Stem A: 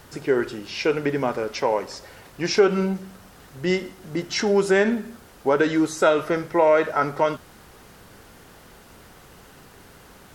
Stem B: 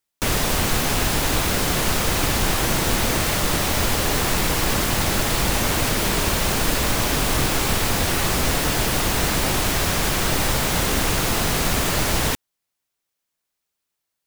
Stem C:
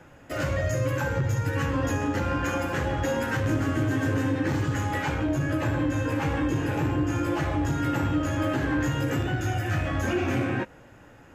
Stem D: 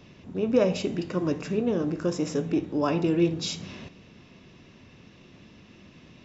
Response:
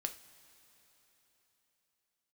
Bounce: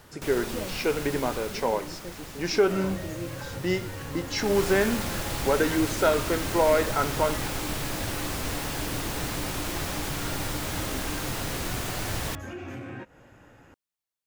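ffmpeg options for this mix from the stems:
-filter_complex "[0:a]volume=-4.5dB[a];[1:a]volume=-4.5dB,afade=t=out:st=1.26:d=0.62:silence=0.473151,afade=t=in:st=4.35:d=0.25:silence=0.281838[b];[2:a]acompressor=threshold=-33dB:ratio=6,adelay=2400,volume=-2.5dB[c];[3:a]volume=-15dB[d];[a][b][c][d]amix=inputs=4:normalize=0"

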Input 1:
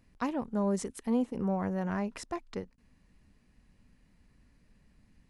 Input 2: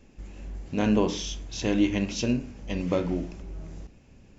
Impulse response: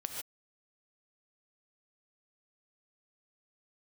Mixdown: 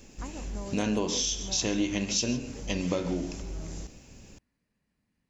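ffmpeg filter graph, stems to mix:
-filter_complex "[0:a]highpass=f=150:p=1,volume=-10dB[a];[1:a]bass=f=250:g=-2,treble=f=4k:g=13,volume=1.5dB,asplit=2[b][c];[c]volume=-8.5dB[d];[2:a]atrim=start_sample=2205[e];[d][e]afir=irnorm=-1:irlink=0[f];[a][b][f]amix=inputs=3:normalize=0,acompressor=threshold=-27dB:ratio=3"

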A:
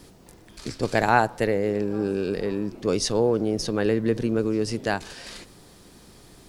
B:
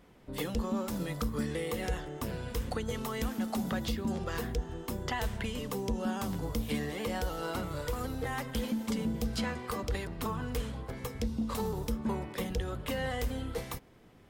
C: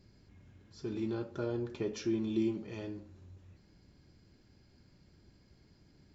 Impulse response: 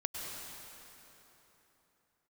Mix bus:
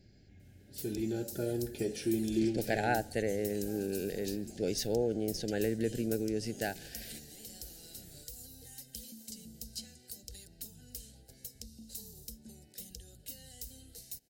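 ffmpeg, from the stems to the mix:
-filter_complex "[0:a]adelay=1750,volume=-9.5dB[a];[1:a]bandreject=f=3.4k:w=6.4,acrossover=split=280|3000[b][c][d];[c]acompressor=threshold=-44dB:ratio=6[e];[b][e][d]amix=inputs=3:normalize=0,aexciter=amount=3.8:drive=9.1:freq=3.3k,adelay=400,volume=-18dB[f];[2:a]acontrast=54,volume=-5dB[g];[a][f][g]amix=inputs=3:normalize=0,asuperstop=centerf=1100:order=8:qfactor=1.7"

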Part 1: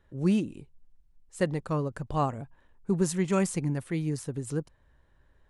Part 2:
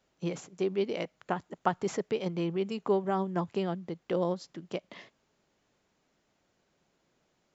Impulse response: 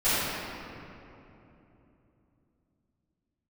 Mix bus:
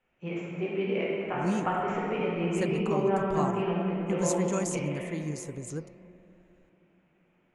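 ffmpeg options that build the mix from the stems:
-filter_complex "[0:a]equalizer=f=6.7k:t=o:w=0.31:g=13.5,flanger=delay=7.5:depth=8:regen=88:speed=1.8:shape=triangular,adelay=1200,volume=-0.5dB[a];[1:a]highshelf=f=3.4k:t=q:w=3:g=-10.5,volume=-7.5dB,asplit=2[b][c];[c]volume=-8dB[d];[2:a]atrim=start_sample=2205[e];[d][e]afir=irnorm=-1:irlink=0[f];[a][b][f]amix=inputs=3:normalize=0"

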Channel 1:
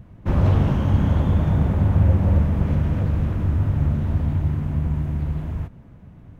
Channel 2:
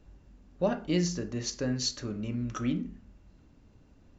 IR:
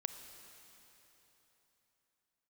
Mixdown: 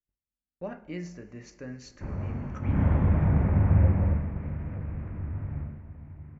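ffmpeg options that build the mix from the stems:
-filter_complex "[0:a]lowpass=f=2.7k:p=1,adelay=1750,volume=-4dB,afade=t=in:st=2.61:d=0.21:silence=0.237137,afade=t=out:st=3.84:d=0.5:silence=0.334965,afade=t=out:st=5.56:d=0.27:silence=0.334965[a];[1:a]volume=-12.5dB,asplit=2[b][c];[c]volume=-6dB[d];[2:a]atrim=start_sample=2205[e];[d][e]afir=irnorm=-1:irlink=0[f];[a][b][f]amix=inputs=3:normalize=0,agate=range=-34dB:threshold=-56dB:ratio=16:detection=peak,highshelf=f=2.8k:t=q:w=3:g=-7"

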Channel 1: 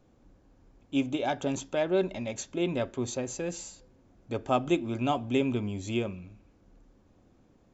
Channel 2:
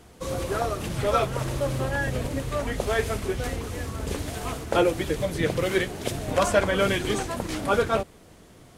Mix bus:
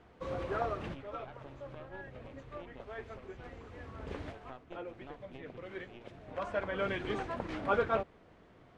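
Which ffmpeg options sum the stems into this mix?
-filter_complex "[0:a]highpass=f=380:p=1,acompressor=threshold=-34dB:ratio=2.5,aeval=exprs='0.133*(cos(1*acos(clip(val(0)/0.133,-1,1)))-cos(1*PI/2))+0.0188*(cos(2*acos(clip(val(0)/0.133,-1,1)))-cos(2*PI/2))+0.0299*(cos(3*acos(clip(val(0)/0.133,-1,1)))-cos(3*PI/2))+0.00531*(cos(6*acos(clip(val(0)/0.133,-1,1)))-cos(6*PI/2))':c=same,volume=-9dB,asplit=2[a][b];[1:a]lowshelf=f=390:g=-6,volume=-5dB[c];[b]apad=whole_len=386813[d];[c][d]sidechaincompress=threshold=-55dB:ratio=8:attack=7.9:release=1230[e];[a][e]amix=inputs=2:normalize=0,lowpass=2.2k"

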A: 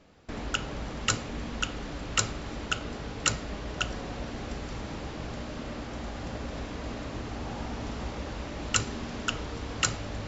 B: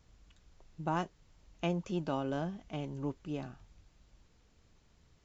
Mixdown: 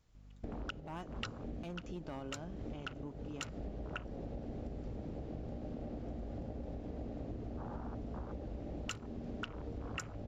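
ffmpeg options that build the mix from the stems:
-filter_complex "[0:a]afwtdn=0.0178,highshelf=f=4.9k:g=-5.5,aeval=exprs='val(0)+0.00158*(sin(2*PI*50*n/s)+sin(2*PI*2*50*n/s)/2+sin(2*PI*3*50*n/s)/3+sin(2*PI*4*50*n/s)/4+sin(2*PI*5*50*n/s)/5)':c=same,adelay=150,volume=1dB[a];[1:a]asoftclip=type=hard:threshold=-27.5dB,volume=-7dB,asplit=2[b][c];[c]apad=whole_len=459765[d];[a][d]sidechaincompress=threshold=-51dB:ratio=10:attack=16:release=266[e];[e][b]amix=inputs=2:normalize=0,acompressor=threshold=-39dB:ratio=10"

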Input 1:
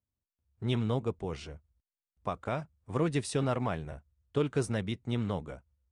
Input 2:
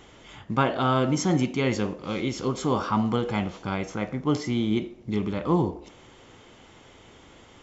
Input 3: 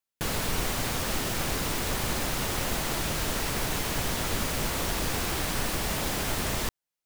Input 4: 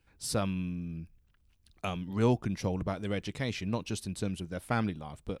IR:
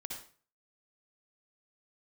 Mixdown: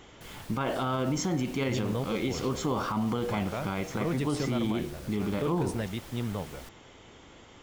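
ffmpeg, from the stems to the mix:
-filter_complex "[0:a]adelay=1050,volume=-1dB[a];[1:a]volume=-1dB,asplit=2[b][c];[2:a]volume=-18.5dB[d];[3:a]adelay=500,volume=-9dB[e];[c]apad=whole_len=260219[f];[e][f]sidechaincompress=threshold=-29dB:ratio=8:attack=16:release=610[g];[a][b][d][g]amix=inputs=4:normalize=0,alimiter=limit=-20.5dB:level=0:latency=1:release=40"

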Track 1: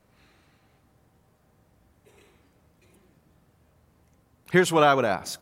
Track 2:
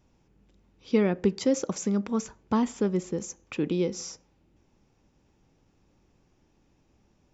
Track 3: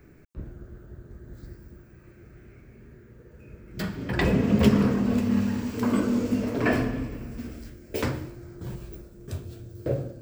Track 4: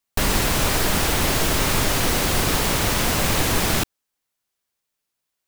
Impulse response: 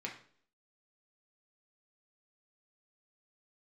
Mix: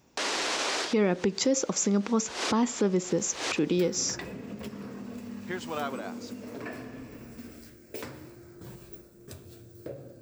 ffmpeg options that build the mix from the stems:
-filter_complex "[0:a]adelay=950,volume=-14.5dB[a];[1:a]acontrast=38,volume=0.5dB,asplit=2[b][c];[2:a]acompressor=threshold=-32dB:ratio=5,volume=-3.5dB,afade=t=in:st=2.8:d=0.41:silence=0.223872[d];[3:a]highpass=f=300:w=0.5412,highpass=f=300:w=1.3066,volume=-0.5dB[e];[c]apad=whole_len=241585[f];[e][f]sidechaincompress=threshold=-51dB:ratio=16:attack=8.8:release=130[g];[b][d]amix=inputs=2:normalize=0,bandreject=f=3.1k:w=27,alimiter=limit=-15dB:level=0:latency=1:release=162,volume=0dB[h];[a][g]amix=inputs=2:normalize=0,lowpass=f=6.5k:w=0.5412,lowpass=f=6.5k:w=1.3066,alimiter=limit=-21.5dB:level=0:latency=1:release=65,volume=0dB[i];[h][i]amix=inputs=2:normalize=0,highpass=f=210:p=1,highshelf=f=5.5k:g=6"

